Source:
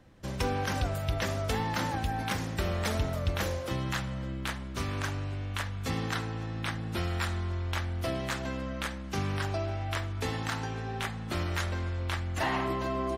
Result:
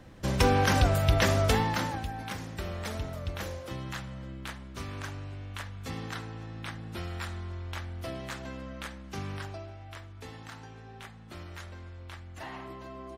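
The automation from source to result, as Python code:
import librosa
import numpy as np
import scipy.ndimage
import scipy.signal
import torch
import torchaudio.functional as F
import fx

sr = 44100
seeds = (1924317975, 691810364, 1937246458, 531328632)

y = fx.gain(x, sr, db=fx.line((1.45, 7.0), (2.13, -5.5), (9.34, -5.5), (9.75, -12.0)))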